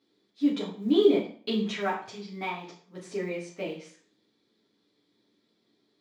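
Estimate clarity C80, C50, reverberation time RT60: 12.0 dB, 7.0 dB, 0.45 s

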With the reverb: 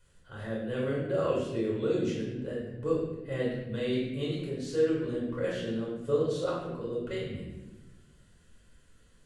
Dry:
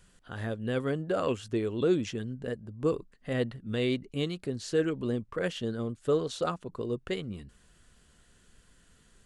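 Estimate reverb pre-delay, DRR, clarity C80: 4 ms, -5.5 dB, 4.0 dB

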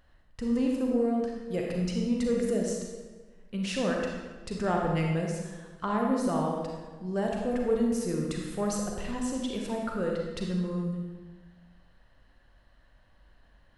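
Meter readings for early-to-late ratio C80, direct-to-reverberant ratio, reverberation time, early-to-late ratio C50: 3.0 dB, -0.5 dB, 1.4 s, 1.0 dB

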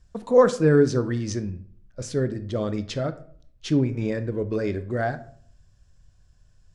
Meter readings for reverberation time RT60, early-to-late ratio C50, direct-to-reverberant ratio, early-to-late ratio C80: 0.55 s, 15.0 dB, 11.0 dB, 18.5 dB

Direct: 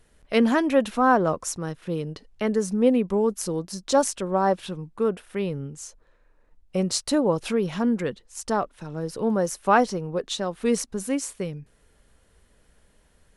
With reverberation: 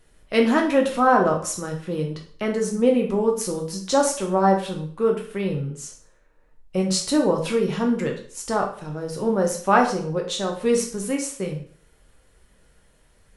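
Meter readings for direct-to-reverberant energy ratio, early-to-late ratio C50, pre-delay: 0.5 dB, 8.0 dB, 4 ms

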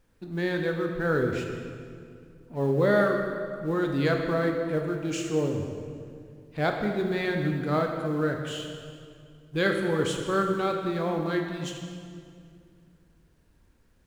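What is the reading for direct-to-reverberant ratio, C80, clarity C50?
2.5 dB, 5.5 dB, 4.0 dB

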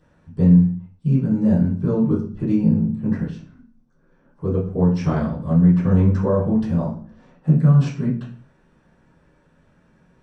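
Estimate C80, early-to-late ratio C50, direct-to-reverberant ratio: 11.5 dB, 6.5 dB, -13.5 dB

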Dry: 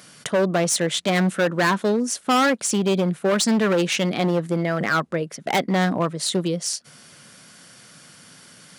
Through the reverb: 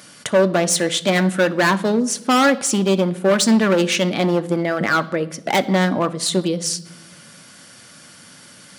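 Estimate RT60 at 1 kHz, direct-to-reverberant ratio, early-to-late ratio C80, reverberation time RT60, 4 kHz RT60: 0.85 s, 10.0 dB, 21.0 dB, 0.85 s, 0.70 s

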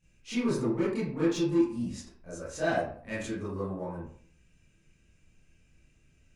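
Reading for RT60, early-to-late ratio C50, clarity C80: 0.55 s, 1.0 dB, 6.0 dB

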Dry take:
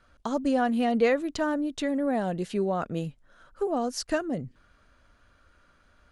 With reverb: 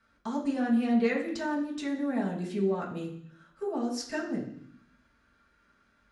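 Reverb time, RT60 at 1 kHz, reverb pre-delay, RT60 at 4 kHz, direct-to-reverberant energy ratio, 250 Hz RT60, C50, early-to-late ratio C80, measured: 0.65 s, 0.70 s, 3 ms, 0.85 s, -5.0 dB, 0.95 s, 7.0 dB, 10.5 dB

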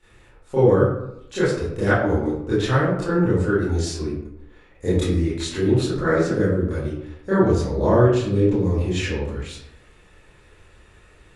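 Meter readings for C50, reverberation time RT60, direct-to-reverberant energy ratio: 0.5 dB, 0.75 s, -13.0 dB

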